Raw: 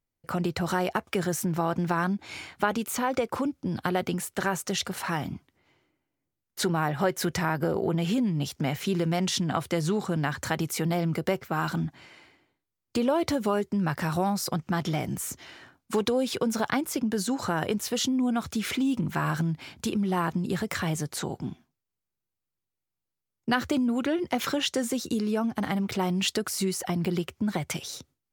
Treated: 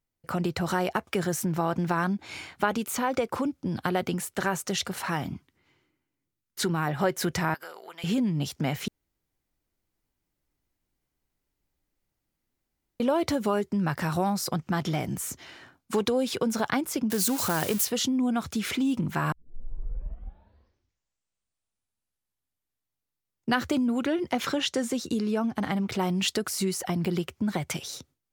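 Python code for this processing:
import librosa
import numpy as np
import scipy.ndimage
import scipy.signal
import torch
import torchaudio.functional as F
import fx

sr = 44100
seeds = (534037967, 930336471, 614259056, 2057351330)

y = fx.peak_eq(x, sr, hz=650.0, db=-7.5, octaves=0.77, at=(5.35, 6.87))
y = fx.highpass(y, sr, hz=1400.0, slope=12, at=(7.54, 8.04))
y = fx.crossing_spikes(y, sr, level_db=-21.5, at=(17.1, 17.85))
y = fx.high_shelf(y, sr, hz=12000.0, db=-9.5, at=(24.32, 25.94))
y = fx.edit(y, sr, fx.room_tone_fill(start_s=8.88, length_s=4.12),
    fx.tape_start(start_s=19.32, length_s=4.19), tone=tone)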